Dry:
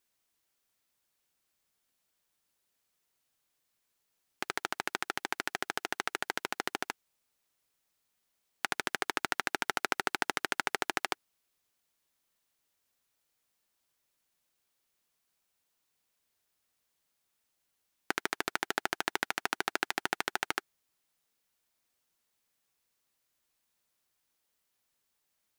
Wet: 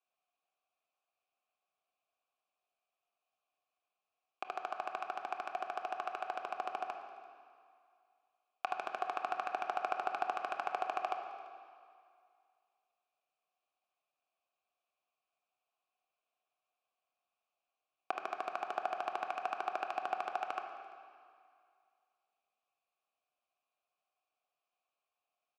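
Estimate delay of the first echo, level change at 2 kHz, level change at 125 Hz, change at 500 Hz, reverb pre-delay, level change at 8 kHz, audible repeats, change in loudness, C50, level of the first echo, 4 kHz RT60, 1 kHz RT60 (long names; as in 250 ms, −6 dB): 340 ms, −11.5 dB, below −15 dB, −1.0 dB, 21 ms, below −20 dB, 1, −5.0 dB, 6.0 dB, −21.5 dB, 1.9 s, 2.3 s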